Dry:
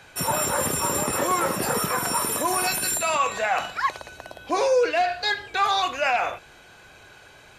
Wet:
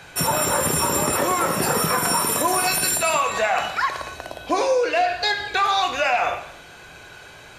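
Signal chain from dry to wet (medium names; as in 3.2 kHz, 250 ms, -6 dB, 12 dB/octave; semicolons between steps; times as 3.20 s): compression, threshold -23 dBFS, peak gain reduction 7 dB; gated-style reverb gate 320 ms falling, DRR 7.5 dB; trim +5.5 dB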